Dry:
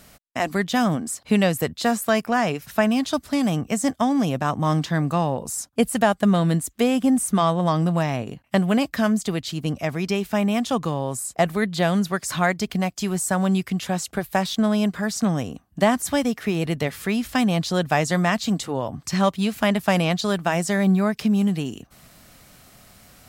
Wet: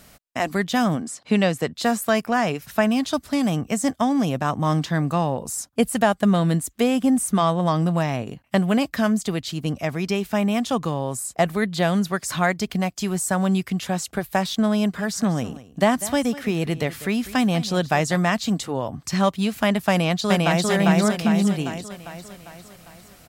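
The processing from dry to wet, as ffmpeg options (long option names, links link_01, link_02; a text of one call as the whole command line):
ffmpeg -i in.wav -filter_complex "[0:a]asettb=1/sr,asplit=3[link_01][link_02][link_03];[link_01]atrim=end=1.024[link_04];[link_02]atrim=start=1.02:end=1.76,asetpts=PTS-STARTPTS,afade=type=in:duration=0.004:curve=qsin,afade=type=out:start_time=0.736:duration=0.004:curve=qsin,highpass=130,lowpass=7400[link_05];[link_03]atrim=start=1.756[link_06];[link_04][link_05]acrossfade=duration=0.004:curve1=hsin:curve2=qsin[link_07];[link_07][link_06]acrossfade=duration=0.004:curve1=qsin:curve2=hsin,asplit=3[link_08][link_09][link_10];[link_08]afade=type=out:start_time=14.97:duration=0.02[link_11];[link_09]aecho=1:1:196:0.15,afade=type=in:start_time=14.97:duration=0.02,afade=type=out:start_time=18.16:duration=0.02[link_12];[link_10]afade=type=in:start_time=18.16:duration=0.02[link_13];[link_11][link_12][link_13]amix=inputs=3:normalize=0,asplit=2[link_14][link_15];[link_15]afade=type=in:start_time=19.9:duration=0.01,afade=type=out:start_time=20.68:duration=0.01,aecho=0:1:400|800|1200|1600|2000|2400|2800|3200:0.944061|0.519233|0.285578|0.157068|0.0863875|0.0475131|0.0261322|0.0143727[link_16];[link_14][link_16]amix=inputs=2:normalize=0" out.wav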